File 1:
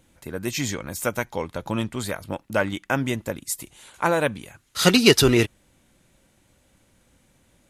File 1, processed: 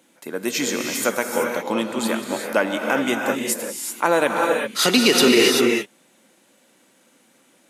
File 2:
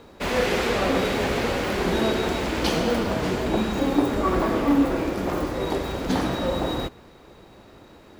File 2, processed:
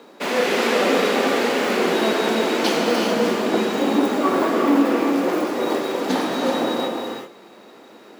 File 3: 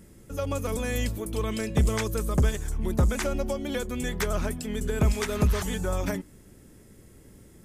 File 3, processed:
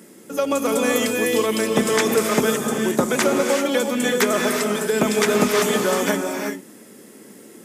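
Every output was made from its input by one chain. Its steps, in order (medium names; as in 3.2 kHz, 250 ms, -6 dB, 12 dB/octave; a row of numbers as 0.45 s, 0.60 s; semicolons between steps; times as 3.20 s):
high-pass 220 Hz 24 dB/octave; gated-style reverb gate 410 ms rising, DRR 2 dB; loudness maximiser +8.5 dB; normalise loudness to -20 LUFS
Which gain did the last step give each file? -4.5 dB, -6.0 dB, +1.5 dB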